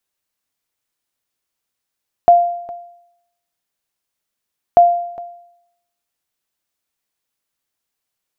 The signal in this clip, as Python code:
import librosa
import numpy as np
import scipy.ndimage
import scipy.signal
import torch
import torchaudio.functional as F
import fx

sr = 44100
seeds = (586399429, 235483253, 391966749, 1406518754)

y = fx.sonar_ping(sr, hz=696.0, decay_s=0.78, every_s=2.49, pings=2, echo_s=0.41, echo_db=-20.5, level_db=-2.0)